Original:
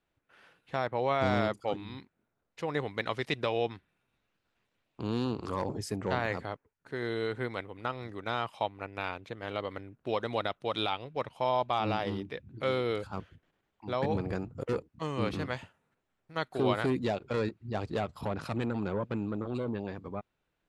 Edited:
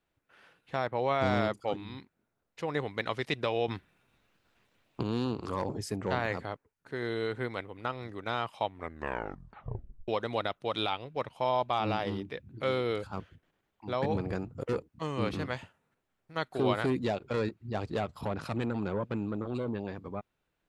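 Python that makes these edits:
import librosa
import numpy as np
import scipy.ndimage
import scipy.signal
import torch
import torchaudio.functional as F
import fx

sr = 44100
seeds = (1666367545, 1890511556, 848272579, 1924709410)

y = fx.edit(x, sr, fx.clip_gain(start_s=3.68, length_s=1.35, db=8.0),
    fx.tape_stop(start_s=8.65, length_s=1.43), tone=tone)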